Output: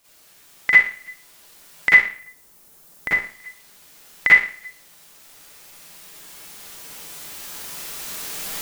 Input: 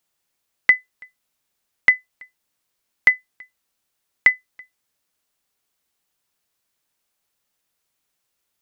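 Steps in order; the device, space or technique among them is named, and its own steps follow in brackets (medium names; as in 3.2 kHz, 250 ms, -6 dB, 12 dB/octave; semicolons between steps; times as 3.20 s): cheap recorder with automatic gain (white noise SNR 27 dB; recorder AGC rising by 5.5 dB/s); 1.93–3.14 s: peaking EQ 2.8 kHz -10 dB 2.6 oct; Schroeder reverb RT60 0.45 s, DRR -9.5 dB; trim -8 dB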